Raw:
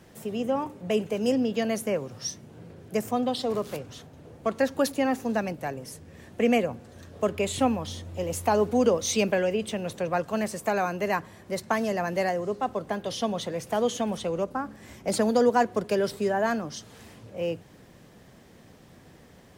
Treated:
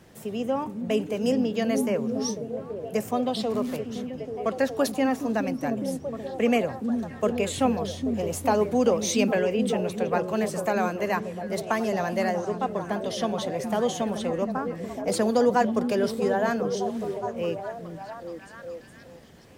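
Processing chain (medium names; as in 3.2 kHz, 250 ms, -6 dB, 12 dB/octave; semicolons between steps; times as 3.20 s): repeats whose band climbs or falls 417 ms, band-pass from 210 Hz, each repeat 0.7 oct, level -1.5 dB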